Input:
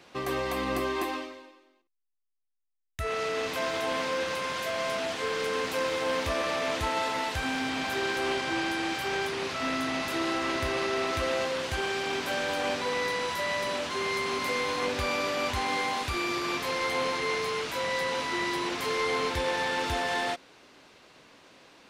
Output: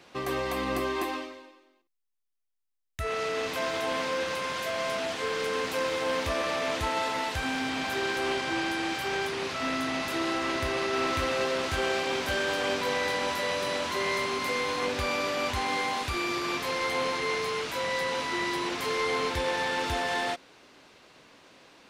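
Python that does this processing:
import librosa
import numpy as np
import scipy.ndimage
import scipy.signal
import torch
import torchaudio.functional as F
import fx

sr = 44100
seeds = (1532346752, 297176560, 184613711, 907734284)

y = fx.echo_single(x, sr, ms=569, db=-4.5, at=(10.37, 14.26))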